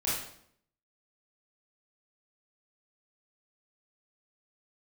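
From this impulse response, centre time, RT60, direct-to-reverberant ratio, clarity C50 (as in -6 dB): 61 ms, 0.65 s, -8.5 dB, 0.5 dB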